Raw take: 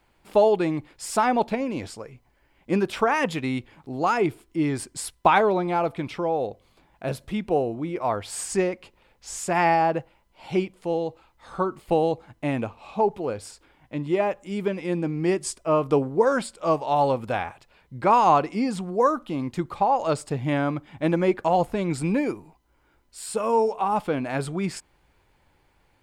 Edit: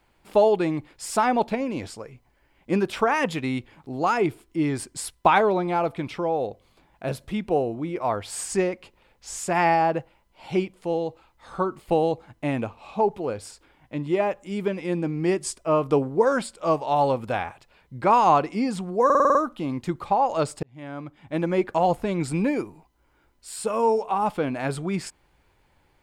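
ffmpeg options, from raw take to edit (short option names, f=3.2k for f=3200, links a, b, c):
-filter_complex "[0:a]asplit=8[a][b][c][d][e][f][g][h];[a]atrim=end=19.102[i];[b]atrim=start=19.048:end=19.102[j];[c]atrim=start=19.048:end=19.102[k];[d]atrim=start=19.048:end=19.102[l];[e]atrim=start=19.048:end=19.102[m];[f]atrim=start=19.048:end=19.102[n];[g]atrim=start=19.048:end=20.33,asetpts=PTS-STARTPTS,afade=t=out:st=1.278:d=0.004:c=hsin[o];[h]atrim=start=20.33,asetpts=PTS-STARTPTS,afade=t=in:d=1.1[p];[i][j]acrossfade=d=0.004:c1=hsin:c2=hsin[q];[q][k]acrossfade=d=0.004:c1=hsin:c2=hsin[r];[r][l]acrossfade=d=0.004:c1=hsin:c2=hsin[s];[s][m]acrossfade=d=0.004:c1=hsin:c2=hsin[t];[t][n]acrossfade=d=0.004:c1=hsin:c2=hsin[u];[o][p]concat=n=2:v=0:a=1[v];[u][v]acrossfade=d=0.004:c1=hsin:c2=hsin"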